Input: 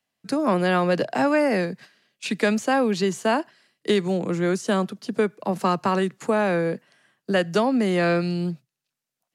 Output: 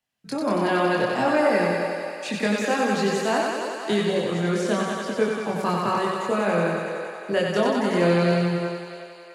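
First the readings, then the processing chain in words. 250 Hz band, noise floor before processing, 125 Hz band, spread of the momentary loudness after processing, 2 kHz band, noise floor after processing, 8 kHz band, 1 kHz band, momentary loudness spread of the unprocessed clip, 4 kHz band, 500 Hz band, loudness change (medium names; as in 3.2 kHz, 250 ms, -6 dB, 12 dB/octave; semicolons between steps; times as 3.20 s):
-1.0 dB, under -85 dBFS, 0.0 dB, 9 LU, +1.0 dB, -43 dBFS, +1.0 dB, +1.0 dB, 10 LU, +1.0 dB, +0.5 dB, -0.5 dB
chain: thinning echo 93 ms, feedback 83%, high-pass 190 Hz, level -3 dB; chorus voices 6, 0.5 Hz, delay 24 ms, depth 1.3 ms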